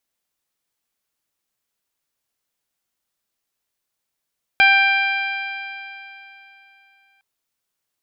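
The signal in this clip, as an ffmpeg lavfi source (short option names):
-f lavfi -i "aevalsrc='0.141*pow(10,-3*t/3.15)*sin(2*PI*784.67*t)+0.2*pow(10,-3*t/3.15)*sin(2*PI*1573.32*t)+0.266*pow(10,-3*t/3.15)*sin(2*PI*2369.92*t)+0.0794*pow(10,-3*t/3.15)*sin(2*PI*3178.36*t)+0.0282*pow(10,-3*t/3.15)*sin(2*PI*4002.43*t)+0.0299*pow(10,-3*t/3.15)*sin(2*PI*4845.81*t)':d=2.61:s=44100"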